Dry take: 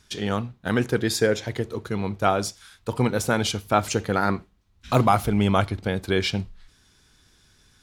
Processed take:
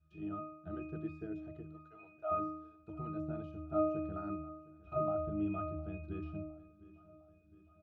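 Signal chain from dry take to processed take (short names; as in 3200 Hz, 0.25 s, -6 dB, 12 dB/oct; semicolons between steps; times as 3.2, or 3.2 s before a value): de-esser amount 85%; 1.71–2.31 elliptic band-pass 540–6700 Hz; octave resonator D#, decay 0.74 s; on a send: feedback echo 0.709 s, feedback 55%, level -20 dB; on the sum: gain +5.5 dB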